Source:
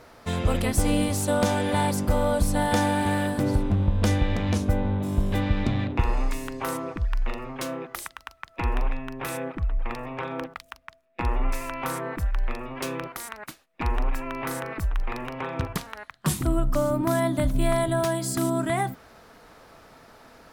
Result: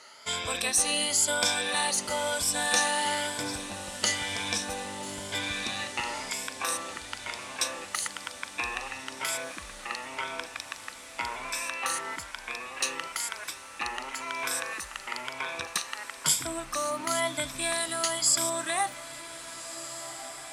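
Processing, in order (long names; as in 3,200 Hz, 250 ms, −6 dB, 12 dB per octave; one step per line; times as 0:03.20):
rippled gain that drifts along the octave scale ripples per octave 1.7, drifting +1 Hz, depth 12 dB
meter weighting curve ITU-R 468
feedback delay with all-pass diffusion 1,640 ms, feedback 69%, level −13.5 dB
level −4.5 dB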